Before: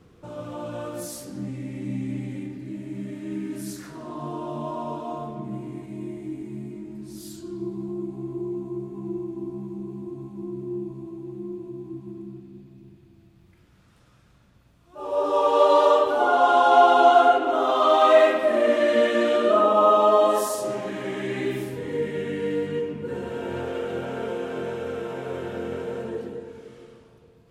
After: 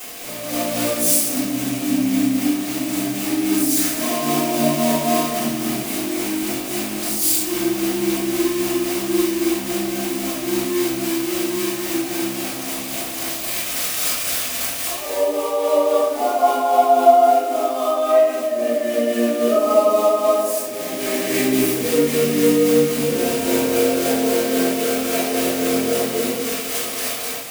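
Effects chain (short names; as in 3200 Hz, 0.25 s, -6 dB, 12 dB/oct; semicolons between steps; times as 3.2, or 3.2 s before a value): switching spikes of -12.5 dBFS; fifteen-band EQ 100 Hz -4 dB, 250 Hz +11 dB, 630 Hz +11 dB, 2500 Hz +3 dB; AGC; tremolo 3.7 Hz, depth 44%; shoebox room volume 74 m³, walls mixed, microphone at 3.7 m; gain -17 dB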